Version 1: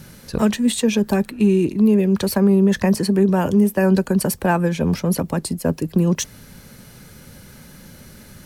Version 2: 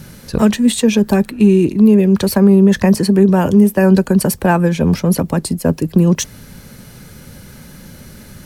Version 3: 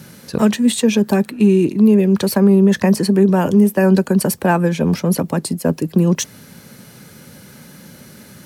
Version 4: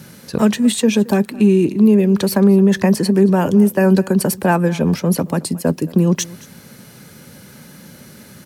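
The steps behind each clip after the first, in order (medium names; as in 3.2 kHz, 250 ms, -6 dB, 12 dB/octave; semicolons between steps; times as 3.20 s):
bass shelf 330 Hz +2.5 dB; trim +4 dB
high-pass 140 Hz 12 dB/octave; trim -1.5 dB
delay 222 ms -21.5 dB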